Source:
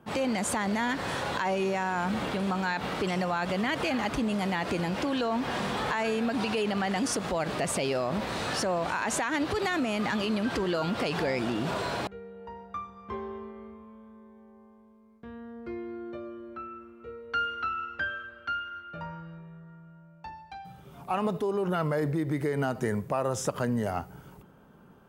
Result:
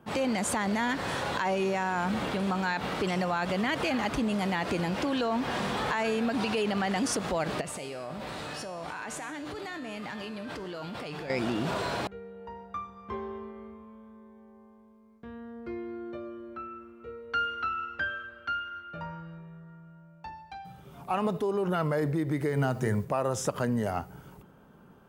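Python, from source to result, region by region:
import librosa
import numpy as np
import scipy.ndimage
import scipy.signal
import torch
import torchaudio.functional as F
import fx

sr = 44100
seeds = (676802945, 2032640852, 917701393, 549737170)

y = fx.chain(x, sr, fx.peak_eq(hz=6100.0, db=-3.0, octaves=0.22),
    fx.comb_fb(f0_hz=150.0, decay_s=1.1, harmonics='all', damping=0.0, mix_pct=80),
    fx.env_flatten(amount_pct=100), at=(7.61, 11.3))
y = fx.chain(y, sr, fx.peak_eq(hz=120.0, db=9.5, octaves=0.42),
    fx.hum_notches(base_hz=60, count=9),
    fx.quant_dither(seeds[0], bits=10, dither='none'), at=(22.49, 23.05))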